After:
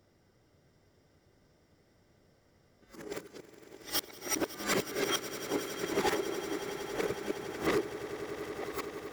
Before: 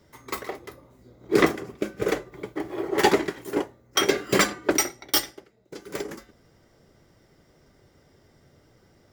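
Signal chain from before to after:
played backwards from end to start
hard clipping −16.5 dBFS, distortion −10 dB
echo that builds up and dies away 92 ms, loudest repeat 8, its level −16.5 dB
level −8.5 dB

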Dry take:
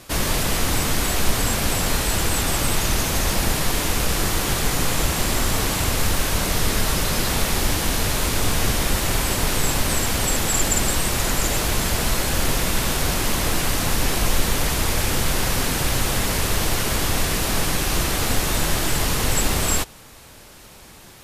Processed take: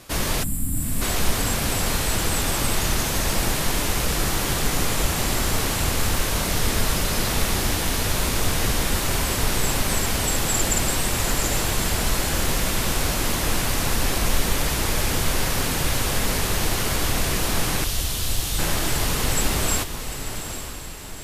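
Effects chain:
0:00.43–0:01.02: gain on a spectral selection 320–7,100 Hz −23 dB
0:17.84–0:18.59: elliptic band-stop filter 110–3,000 Hz
feedback delay with all-pass diffusion 850 ms, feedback 47%, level −9 dB
level −2 dB

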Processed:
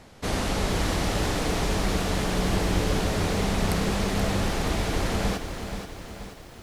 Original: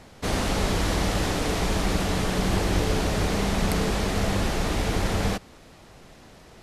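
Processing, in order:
feedback echo at a low word length 479 ms, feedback 55%, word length 8 bits, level −8 dB
level −1.5 dB

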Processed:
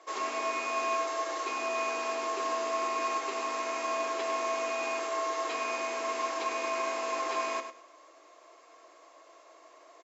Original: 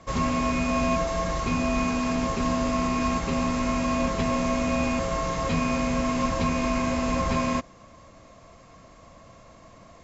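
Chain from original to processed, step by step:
elliptic high-pass filter 330 Hz, stop band 40 dB
notch filter 540 Hz, Q 12
repeating echo 100 ms, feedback 21%, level −9 dB
level −3.5 dB

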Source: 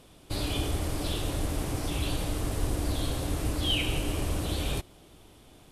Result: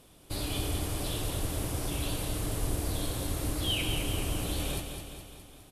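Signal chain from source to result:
parametric band 12,000 Hz +7 dB 1 octave
repeating echo 208 ms, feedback 58%, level −7 dB
level −3.5 dB

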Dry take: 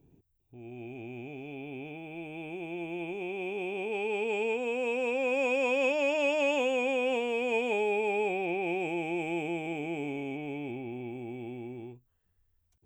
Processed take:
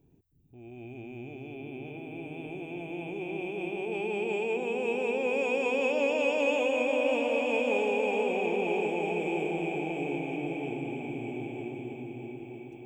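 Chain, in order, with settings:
echo whose low-pass opens from repeat to repeat 317 ms, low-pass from 200 Hz, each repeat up 2 octaves, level 0 dB
level −1.5 dB

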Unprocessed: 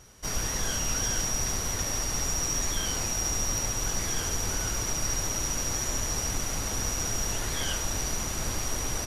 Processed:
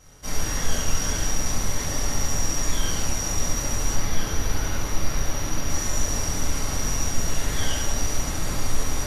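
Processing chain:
0:03.94–0:05.70: parametric band 7,900 Hz −9 dB 0.73 octaves
rectangular room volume 280 cubic metres, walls mixed, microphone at 2.1 metres
level −3.5 dB

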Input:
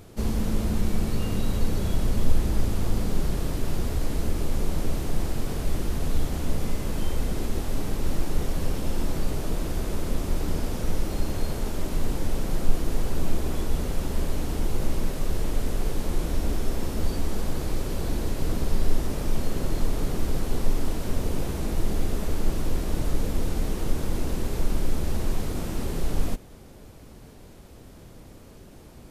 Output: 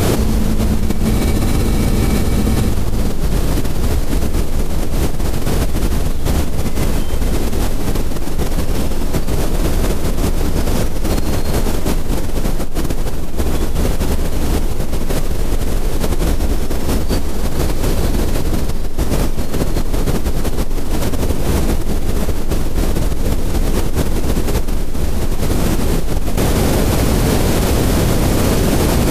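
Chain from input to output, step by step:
frozen spectrum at 0:01.09, 1.60 s
envelope flattener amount 100%
level −4 dB

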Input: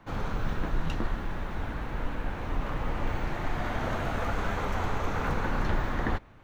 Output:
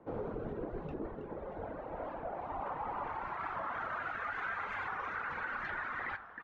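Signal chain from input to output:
high-shelf EQ 4,900 Hz −9 dB
band-pass filter sweep 440 Hz → 1,600 Hz, 0:01.17–0:04.36
low-shelf EQ 130 Hz +7 dB
notch filter 1,700 Hz, Q 27
repeating echo 311 ms, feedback 50%, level −10 dB
reverb reduction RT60 1.9 s
brickwall limiter −36 dBFS, peak gain reduction 8.5 dB
hum removal 54.49 Hz, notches 28
convolution reverb RT60 0.95 s, pre-delay 53 ms, DRR 15.5 dB
wow of a warped record 45 rpm, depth 160 cents
level +7 dB

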